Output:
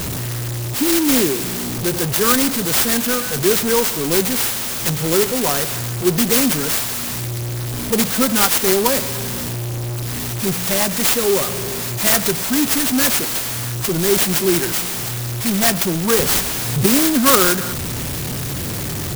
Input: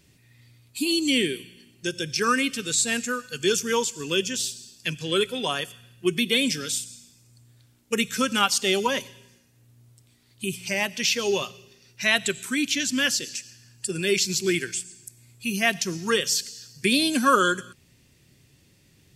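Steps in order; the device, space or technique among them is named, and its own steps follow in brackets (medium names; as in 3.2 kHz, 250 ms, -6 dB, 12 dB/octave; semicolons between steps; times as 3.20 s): early CD player with a faulty converter (jump at every zero crossing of -22.5 dBFS; sampling jitter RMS 0.13 ms); 16.19–16.86 s: bass shelf 360 Hz +8.5 dB; trim +4.5 dB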